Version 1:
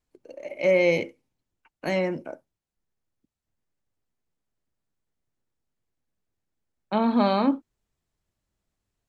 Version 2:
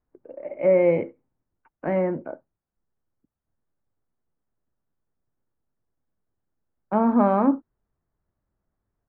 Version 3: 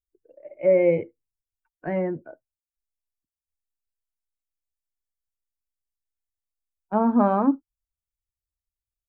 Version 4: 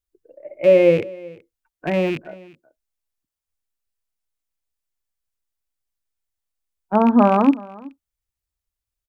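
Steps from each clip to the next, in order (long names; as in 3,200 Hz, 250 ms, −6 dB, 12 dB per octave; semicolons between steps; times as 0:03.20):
low-pass filter 1,600 Hz 24 dB per octave; level +2.5 dB
spectral dynamics exaggerated over time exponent 1.5; level +1 dB
loose part that buzzes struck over −37 dBFS, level −26 dBFS; single-tap delay 377 ms −22 dB; level +5.5 dB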